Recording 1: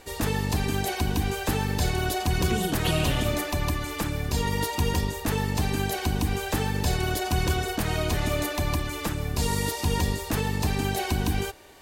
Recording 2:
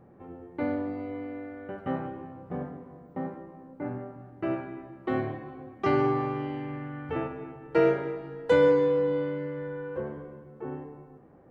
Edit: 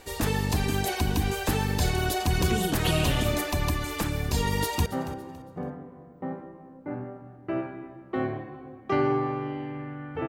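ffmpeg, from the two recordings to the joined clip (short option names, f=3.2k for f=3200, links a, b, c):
-filter_complex "[0:a]apad=whole_dur=10.28,atrim=end=10.28,atrim=end=4.862[a];[1:a]atrim=start=1.798:end=7.22[b];[a][b]acrossfade=d=0.004:c1=hsin:c2=hsin,asplit=2[c][d];[d]afade=t=in:st=4.52:d=0.01,afade=t=out:st=4.86:d=0.01,aecho=0:1:280|560|840:0.16788|0.0503641|0.0151092[e];[c][e]amix=inputs=2:normalize=0"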